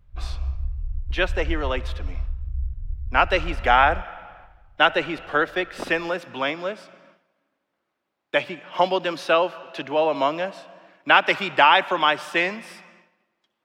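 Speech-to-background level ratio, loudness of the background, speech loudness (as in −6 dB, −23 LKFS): 11.0 dB, −33.0 LKFS, −22.0 LKFS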